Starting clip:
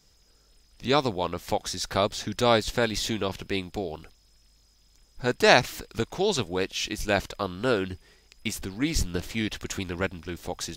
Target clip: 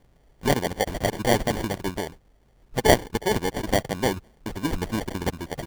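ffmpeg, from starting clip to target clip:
-af "acrusher=samples=34:mix=1:aa=0.000001,atempo=1.9,volume=1.33"

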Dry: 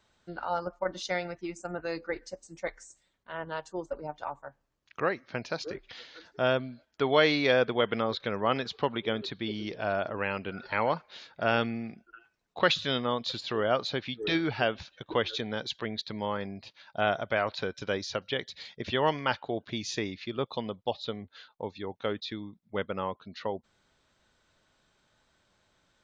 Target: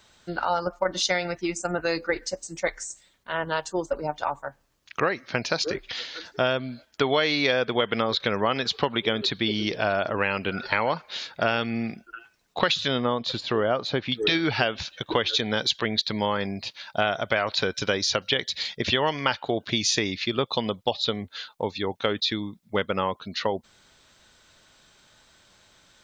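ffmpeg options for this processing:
-af "asetnsamples=n=441:p=0,asendcmd='12.88 highshelf g -5.5;14.12 highshelf g 8.5',highshelf=f=2300:g=7.5,acompressor=threshold=0.0398:ratio=6,volume=2.66"

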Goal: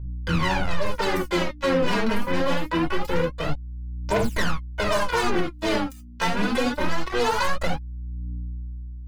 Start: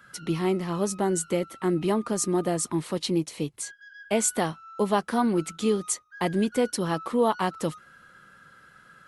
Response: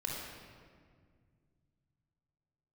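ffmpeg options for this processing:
-filter_complex "[0:a]asplit=2[s0][s1];[s1]asetrate=66075,aresample=44100,atempo=0.66742,volume=0.562[s2];[s0][s2]amix=inputs=2:normalize=0,highpass=f=130:w=0.5412,highpass=f=130:w=1.3066,bass=f=250:g=0,treble=f=4000:g=-12,acrusher=bits=3:mix=0:aa=0.5,aeval=exprs='val(0)+0.00501*(sin(2*PI*60*n/s)+sin(2*PI*2*60*n/s)/2+sin(2*PI*3*60*n/s)/3+sin(2*PI*4*60*n/s)/4+sin(2*PI*5*60*n/s)/5)':c=same[s3];[1:a]atrim=start_sample=2205,atrim=end_sample=3969[s4];[s3][s4]afir=irnorm=-1:irlink=0,aphaser=in_gain=1:out_gain=1:delay=4.5:decay=0.72:speed=0.24:type=triangular,equalizer=f=390:w=0.99:g=-7,alimiter=limit=0.15:level=0:latency=1:release=100,volume=1.58"

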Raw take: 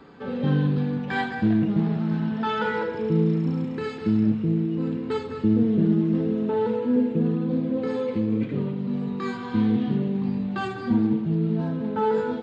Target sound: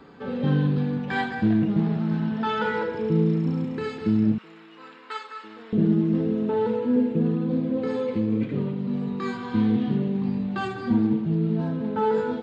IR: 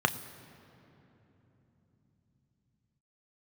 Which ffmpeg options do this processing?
-filter_complex "[0:a]asettb=1/sr,asplit=3[s0][s1][s2];[s0]atrim=end=4.384[s3];[s1]atrim=start=4.38:end=5.73,asetpts=PTS-STARTPTS,afade=t=in:d=0.004:c=qsin,afade=t=out:st=1.346:d=0.004:c=qsin,highpass=f=1200:t=q:w=1.5[s4];[s2]atrim=start=5.726[s5];[s3][s4]acrossfade=d=0.004:c1=hsin:c2=qsin[s6];[s6][s5]acrossfade=d=0.004:c1=qsin:c2=hsin"

